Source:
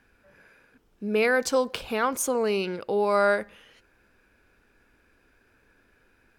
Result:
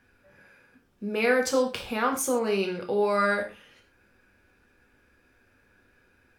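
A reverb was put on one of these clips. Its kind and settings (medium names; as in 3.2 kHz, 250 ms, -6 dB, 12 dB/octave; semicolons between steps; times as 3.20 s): gated-style reverb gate 150 ms falling, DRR 1.5 dB; trim -2.5 dB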